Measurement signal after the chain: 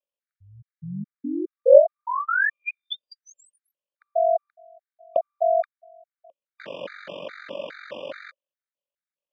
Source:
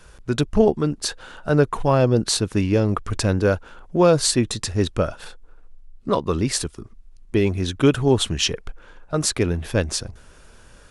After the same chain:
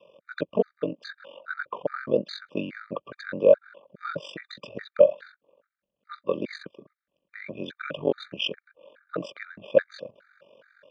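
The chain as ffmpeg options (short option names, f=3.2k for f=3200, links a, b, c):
-af "equalizer=f=570:w=4.4:g=15,aeval=exprs='val(0)*sin(2*PI*23*n/s)':c=same,highpass=f=190:w=0.5412,highpass=f=190:w=1.3066,equalizer=f=250:t=q:w=4:g=-4,equalizer=f=380:t=q:w=4:g=-3,equalizer=f=550:t=q:w=4:g=5,equalizer=f=780:t=q:w=4:g=-8,equalizer=f=1.6k:t=q:w=4:g=5,equalizer=f=3k:t=q:w=4:g=5,lowpass=f=3.4k:w=0.5412,lowpass=f=3.4k:w=1.3066,afftfilt=real='re*gt(sin(2*PI*2.4*pts/sr)*(1-2*mod(floor(b*sr/1024/1200),2)),0)':imag='im*gt(sin(2*PI*2.4*pts/sr)*(1-2*mod(floor(b*sr/1024/1200),2)),0)':win_size=1024:overlap=0.75,volume=-3.5dB"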